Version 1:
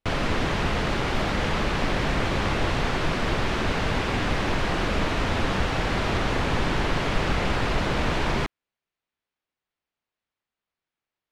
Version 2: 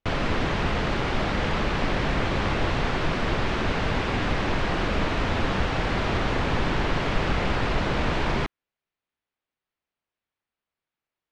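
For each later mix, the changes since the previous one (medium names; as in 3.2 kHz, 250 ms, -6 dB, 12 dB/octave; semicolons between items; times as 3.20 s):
master: add distance through air 60 m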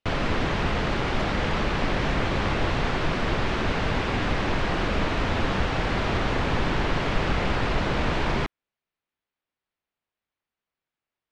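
speech: add frequency weighting D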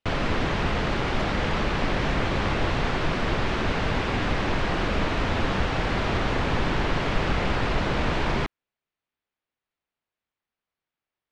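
no change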